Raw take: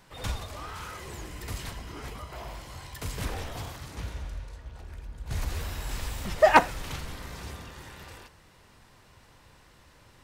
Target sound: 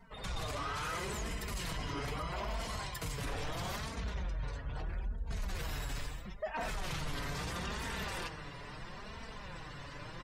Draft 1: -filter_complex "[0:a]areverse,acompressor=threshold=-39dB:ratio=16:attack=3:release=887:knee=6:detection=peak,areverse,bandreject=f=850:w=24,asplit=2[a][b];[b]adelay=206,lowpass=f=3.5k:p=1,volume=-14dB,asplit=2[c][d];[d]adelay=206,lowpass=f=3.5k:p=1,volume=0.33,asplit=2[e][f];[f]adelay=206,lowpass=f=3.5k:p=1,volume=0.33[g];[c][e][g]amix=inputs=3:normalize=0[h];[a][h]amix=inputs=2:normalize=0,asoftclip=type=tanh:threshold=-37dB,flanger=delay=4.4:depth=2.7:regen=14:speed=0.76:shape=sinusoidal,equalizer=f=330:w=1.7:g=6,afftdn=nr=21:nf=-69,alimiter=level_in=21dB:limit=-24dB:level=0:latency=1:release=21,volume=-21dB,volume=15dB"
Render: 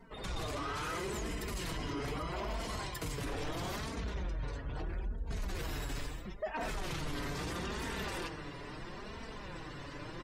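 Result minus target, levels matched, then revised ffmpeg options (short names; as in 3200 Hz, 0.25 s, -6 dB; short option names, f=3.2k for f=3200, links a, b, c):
250 Hz band +3.0 dB
-filter_complex "[0:a]areverse,acompressor=threshold=-39dB:ratio=16:attack=3:release=887:knee=6:detection=peak,areverse,bandreject=f=850:w=24,asplit=2[a][b];[b]adelay=206,lowpass=f=3.5k:p=1,volume=-14dB,asplit=2[c][d];[d]adelay=206,lowpass=f=3.5k:p=1,volume=0.33,asplit=2[e][f];[f]adelay=206,lowpass=f=3.5k:p=1,volume=0.33[g];[c][e][g]amix=inputs=3:normalize=0[h];[a][h]amix=inputs=2:normalize=0,asoftclip=type=tanh:threshold=-37dB,flanger=delay=4.4:depth=2.7:regen=14:speed=0.76:shape=sinusoidal,equalizer=f=330:w=1.7:g=-2.5,afftdn=nr=21:nf=-69,alimiter=level_in=21dB:limit=-24dB:level=0:latency=1:release=21,volume=-21dB,volume=15dB"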